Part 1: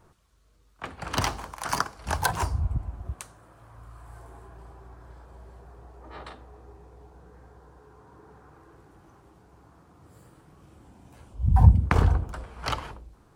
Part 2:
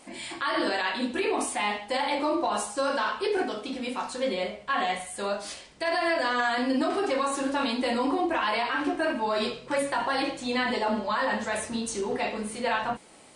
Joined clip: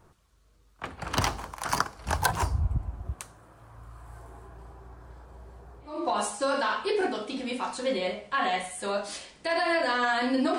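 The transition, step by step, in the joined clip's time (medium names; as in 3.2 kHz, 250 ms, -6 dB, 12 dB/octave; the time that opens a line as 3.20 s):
part 1
5.93 s: go over to part 2 from 2.29 s, crossfade 0.32 s quadratic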